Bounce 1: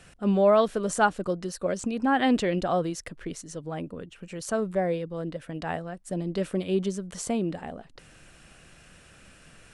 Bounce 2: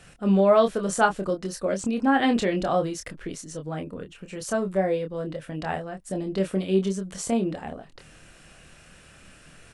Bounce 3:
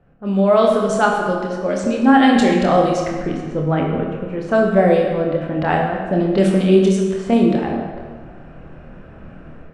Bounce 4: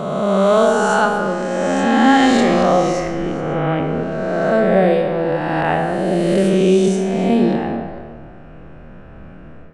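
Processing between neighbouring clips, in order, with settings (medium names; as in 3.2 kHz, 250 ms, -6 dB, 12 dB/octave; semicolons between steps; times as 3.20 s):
doubling 26 ms -5.5 dB; trim +1 dB
level-controlled noise filter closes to 760 Hz, open at -20 dBFS; level rider gain up to 15 dB; on a send at -1.5 dB: reverberation RT60 1.7 s, pre-delay 34 ms; on the sum: trim -2 dB
reverse spectral sustain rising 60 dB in 2.23 s; trim -3 dB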